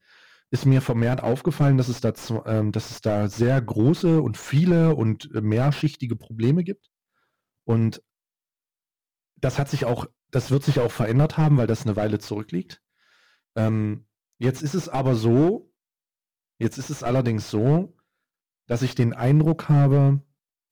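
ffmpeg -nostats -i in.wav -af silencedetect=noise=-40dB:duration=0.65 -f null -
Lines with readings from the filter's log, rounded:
silence_start: 6.73
silence_end: 7.68 | silence_duration: 0.94
silence_start: 7.99
silence_end: 9.43 | silence_duration: 1.44
silence_start: 12.74
silence_end: 13.56 | silence_duration: 0.82
silence_start: 15.60
silence_end: 16.60 | silence_duration: 1.00
silence_start: 17.87
silence_end: 18.69 | silence_duration: 0.83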